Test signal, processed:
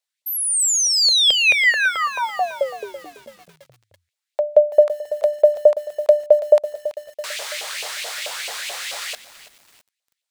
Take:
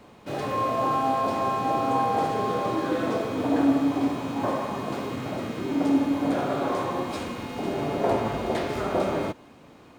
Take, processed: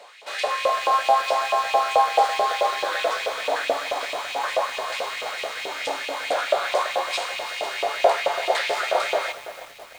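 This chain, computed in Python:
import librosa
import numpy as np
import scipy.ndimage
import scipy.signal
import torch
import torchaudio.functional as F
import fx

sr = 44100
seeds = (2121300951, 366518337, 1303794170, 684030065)

y = fx.filter_lfo_highpass(x, sr, shape='saw_up', hz=4.6, low_hz=590.0, high_hz=2800.0, q=3.1)
y = fx.graphic_eq(y, sr, hz=(125, 250, 500, 1000, 2000, 4000, 8000), db=(5, -10, 9, -4, 5, 9, 8))
y = fx.echo_crushed(y, sr, ms=332, feedback_pct=55, bits=6, wet_db=-13.0)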